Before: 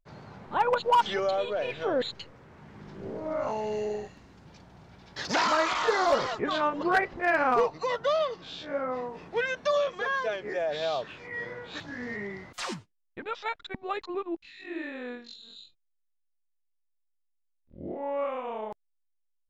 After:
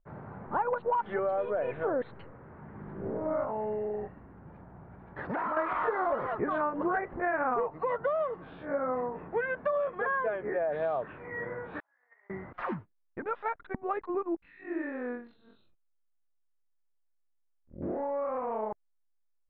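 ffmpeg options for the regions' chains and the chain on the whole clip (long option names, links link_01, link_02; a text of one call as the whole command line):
ffmpeg -i in.wav -filter_complex "[0:a]asettb=1/sr,asplit=3[link_01][link_02][link_03];[link_01]atrim=end=3.444[link_04];[link_02]atrim=start=3.44:end=5.57,asetpts=PTS-STARTPTS,afade=type=in:duration=0.004:curve=qsin,afade=type=out:start_time=2.126:duration=0.004:curve=qsin,lowpass=frequency=2500:poles=1,acompressor=threshold=-33dB:ratio=3:attack=3.2:release=140:knee=1:detection=peak[link_05];[link_03]atrim=start=5.566[link_06];[link_04][link_05]acrossfade=duration=0.004:curve1=hsin:curve2=qsin[link_07];[link_07][link_06]acrossfade=duration=0.004:curve1=qsin:curve2=hsin,asettb=1/sr,asplit=3[link_08][link_09][link_10];[link_08]atrim=end=11.804[link_11];[link_09]atrim=start=11.8:end=12.3,asetpts=PTS-STARTPTS,afade=type=in:duration=0.004:curve=qsin,afade=type=out:start_time=0.496:duration=0.004:curve=qsin,agate=range=-31dB:threshold=-33dB:ratio=16:release=100:detection=peak,highpass=frequency=700:width=0.5412,highpass=frequency=700:width=1.3066[link_12];[link_10]atrim=start=12.296[link_13];[link_11][link_12]acrossfade=duration=0.004:curve1=hsin:curve2=qsin[link_14];[link_14][link_13]acrossfade=duration=0.004:curve1=qsin:curve2=hsin,asettb=1/sr,asplit=3[link_15][link_16][link_17];[link_15]atrim=end=17.824[link_18];[link_16]atrim=start=17.82:end=18.52,asetpts=PTS-STARTPTS,afade=type=in:duration=0.004:curve=qsin,afade=type=out:start_time=0.696:duration=0.004:curve=qsin,aeval=exprs='val(0)+0.5*0.0075*sgn(val(0))':channel_layout=same,acompressor=threshold=-32dB:ratio=3:attack=3.2:release=140:knee=1:detection=peak,equalizer=frequency=3300:width=1.9:gain=-8[link_19];[link_17]atrim=start=18.516[link_20];[link_18][link_19]acrossfade=duration=0.004:curve1=hsin:curve2=qsin[link_21];[link_21][link_20]acrossfade=duration=0.004:curve1=qsin:curve2=hsin,lowpass=frequency=1700:width=0.5412,lowpass=frequency=1700:width=1.3066,acompressor=threshold=-29dB:ratio=6,volume=2.5dB" out.wav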